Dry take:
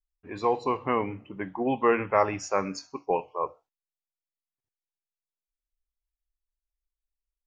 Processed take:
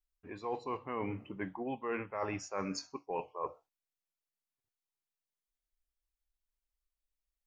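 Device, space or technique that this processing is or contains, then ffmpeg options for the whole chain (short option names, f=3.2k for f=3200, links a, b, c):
compression on the reversed sound: -af "areverse,acompressor=threshold=-32dB:ratio=10,areverse,volume=-1.5dB"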